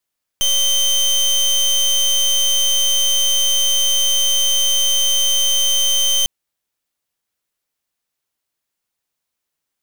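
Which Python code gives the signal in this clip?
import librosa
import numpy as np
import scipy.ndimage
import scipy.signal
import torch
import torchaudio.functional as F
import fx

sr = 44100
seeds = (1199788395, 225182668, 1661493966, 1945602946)

y = fx.pulse(sr, length_s=5.85, hz=3110.0, level_db=-15.5, duty_pct=26)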